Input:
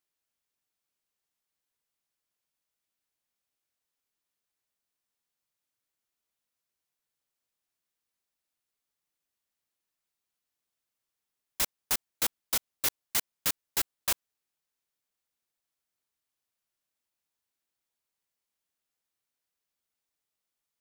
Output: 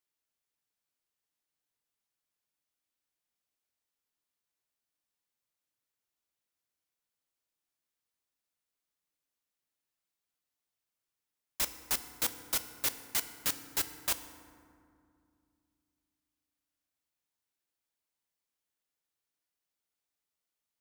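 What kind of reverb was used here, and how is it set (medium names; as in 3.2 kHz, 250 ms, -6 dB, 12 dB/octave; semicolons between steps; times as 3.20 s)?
FDN reverb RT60 2.3 s, low-frequency decay 1.5×, high-frequency decay 0.45×, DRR 9.5 dB; trim -3 dB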